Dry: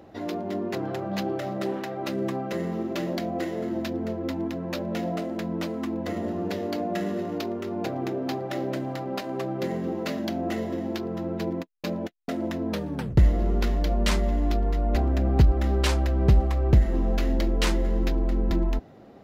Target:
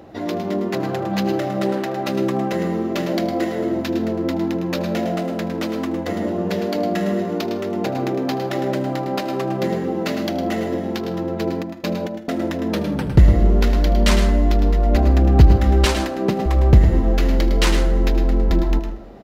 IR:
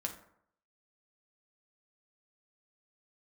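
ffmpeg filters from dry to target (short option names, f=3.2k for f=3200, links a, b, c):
-filter_complex "[0:a]asettb=1/sr,asplit=3[a][b][c];[a]atrim=end=15.854[d];[b]atrim=start=15.85:end=16.46,asetpts=PTS-STARTPTS,afade=t=in:d=0.004:c=qsin,afade=t=out:st=0.606:d=0.004:c=qsin,highpass=f=190:w=0.5412,highpass=f=190:w=1.3066[e];[c]atrim=start=16.456[f];[d][e]acrossfade=d=0.004:c1=hsin:c2=qsin[g];[g][f]acrossfade=d=0.004:c1=qsin:c2=hsin,aecho=1:1:78|156|234|312:0.112|0.055|0.0269|0.0132,asplit=2[h][i];[1:a]atrim=start_sample=2205,adelay=107[j];[i][j]afir=irnorm=-1:irlink=0,volume=-7.5dB[k];[h][k]amix=inputs=2:normalize=0,volume=6.5dB"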